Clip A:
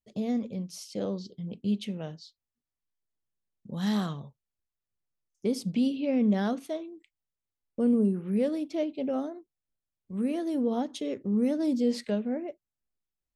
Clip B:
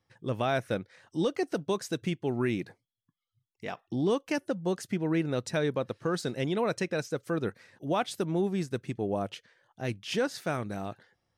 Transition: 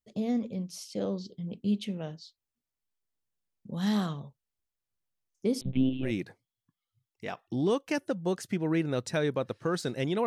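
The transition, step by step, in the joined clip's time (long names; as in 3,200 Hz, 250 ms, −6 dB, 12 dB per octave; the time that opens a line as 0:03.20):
clip A
0:05.61–0:06.12: one-pitch LPC vocoder at 8 kHz 130 Hz
0:06.07: continue with clip B from 0:02.47, crossfade 0.10 s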